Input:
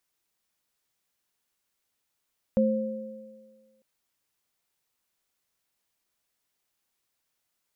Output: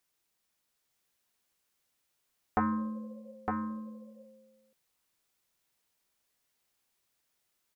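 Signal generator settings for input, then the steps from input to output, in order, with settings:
sine partials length 1.25 s, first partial 218 Hz, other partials 528 Hz, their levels -1 dB, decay 1.48 s, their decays 1.67 s, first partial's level -20 dB
self-modulated delay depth 0.79 ms; spectral repair 2.62–3.31, 360–840 Hz after; on a send: echo 0.909 s -4.5 dB

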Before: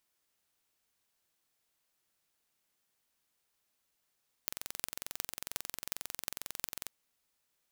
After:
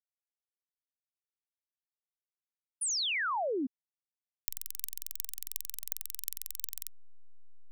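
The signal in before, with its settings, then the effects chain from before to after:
pulse train 22.2/s, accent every 8, -5.5 dBFS 2.41 s
differentiator; backlash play -36.5 dBFS; painted sound fall, 2.81–3.67, 240–10000 Hz -32 dBFS

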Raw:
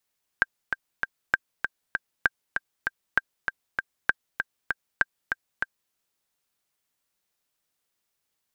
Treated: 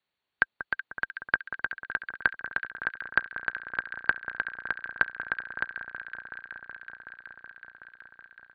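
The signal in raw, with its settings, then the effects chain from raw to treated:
metronome 196 bpm, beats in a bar 3, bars 6, 1580 Hz, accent 6 dB -6 dBFS
HPF 42 Hz 12 dB/oct; on a send: echo with dull and thin repeats by turns 0.187 s, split 1500 Hz, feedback 89%, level -10 dB; on the sum: AC-3 48 kbps 32000 Hz

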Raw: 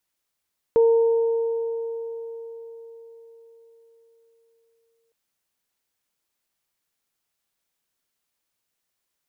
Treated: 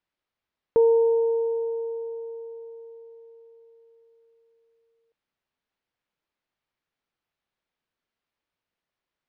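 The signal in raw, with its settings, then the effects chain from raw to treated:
additive tone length 4.36 s, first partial 459 Hz, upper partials -18 dB, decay 4.67 s, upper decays 3.79 s, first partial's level -12.5 dB
air absorption 240 m

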